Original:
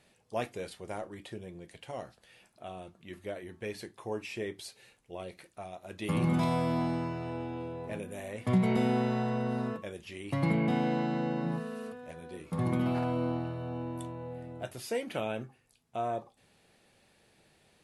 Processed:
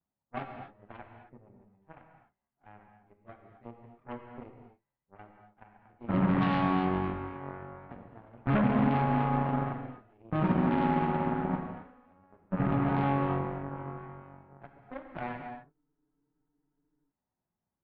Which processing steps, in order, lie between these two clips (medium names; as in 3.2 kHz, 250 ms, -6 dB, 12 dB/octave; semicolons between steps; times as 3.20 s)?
frequency-domain pitch shifter +2 st; low-pass 1.3 kHz 24 dB/octave; peaking EQ 490 Hz -12 dB 0.9 oct; in parallel at 0 dB: peak limiter -29 dBFS, peak gain reduction 9 dB; on the sum: Chebyshev shaper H 4 -16 dB, 5 -7 dB, 6 -15 dB, 7 -7 dB, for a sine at -17 dBFS; gated-style reverb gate 290 ms flat, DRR 4 dB; spectral freeze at 15.74 s, 1.36 s; trim -2.5 dB